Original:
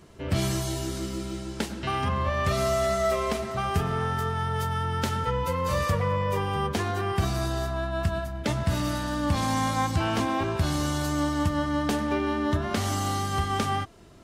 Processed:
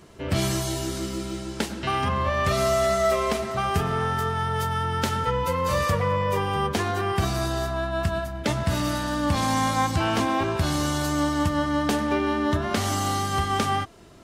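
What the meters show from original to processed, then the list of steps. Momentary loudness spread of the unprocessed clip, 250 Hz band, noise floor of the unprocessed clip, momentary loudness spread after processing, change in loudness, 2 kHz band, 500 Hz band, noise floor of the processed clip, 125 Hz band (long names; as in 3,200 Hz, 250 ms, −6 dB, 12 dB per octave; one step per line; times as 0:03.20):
5 LU, +2.0 dB, −37 dBFS, 5 LU, +2.5 dB, +3.5 dB, +3.0 dB, −35 dBFS, +0.5 dB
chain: low-shelf EQ 180 Hz −4 dB
level +3.5 dB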